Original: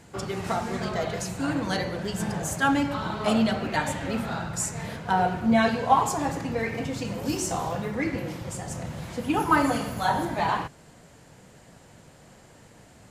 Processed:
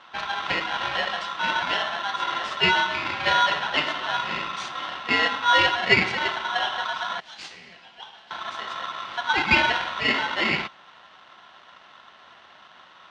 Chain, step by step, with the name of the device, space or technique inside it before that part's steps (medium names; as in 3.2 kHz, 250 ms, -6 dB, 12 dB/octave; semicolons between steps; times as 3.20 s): 7.20–8.31 s: pre-emphasis filter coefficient 0.97; ring modulator pedal into a guitar cabinet (polarity switched at an audio rate 1.2 kHz; cabinet simulation 95–4200 Hz, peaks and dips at 110 Hz -8 dB, 280 Hz -5 dB, 460 Hz -8 dB, 760 Hz +3 dB, 2.9 kHz +5 dB); trim +2 dB